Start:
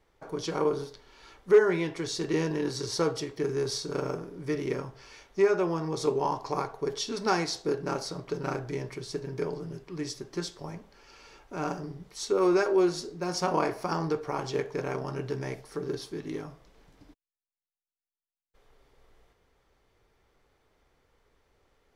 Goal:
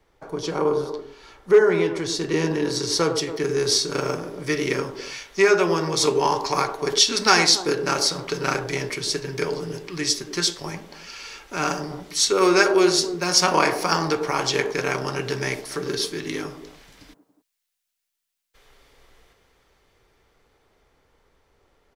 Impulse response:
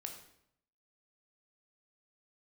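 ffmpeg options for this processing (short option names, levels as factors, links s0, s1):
-filter_complex "[0:a]acrossover=split=160|1500[s0][s1][s2];[s1]aecho=1:1:100|280:0.531|0.282[s3];[s2]dynaudnorm=f=550:g=13:m=4.47[s4];[s0][s3][s4]amix=inputs=3:normalize=0,volume=1.68"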